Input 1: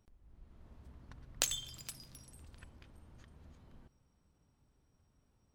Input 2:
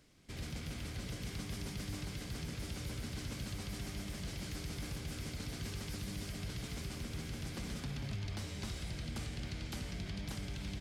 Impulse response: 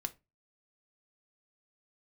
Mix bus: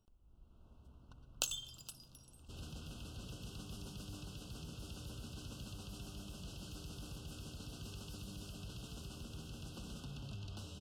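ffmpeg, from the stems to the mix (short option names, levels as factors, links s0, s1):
-filter_complex "[0:a]volume=0.596[s0];[1:a]asoftclip=type=hard:threshold=0.0188,adelay=2200,volume=0.473[s1];[s0][s1]amix=inputs=2:normalize=0,asuperstop=centerf=2000:order=20:qfactor=1.9,equalizer=f=2800:w=3.4:g=4.5"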